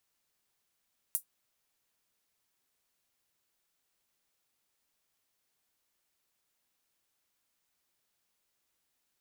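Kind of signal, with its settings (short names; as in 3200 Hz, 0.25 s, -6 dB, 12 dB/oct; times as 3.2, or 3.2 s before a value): closed hi-hat, high-pass 9700 Hz, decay 0.11 s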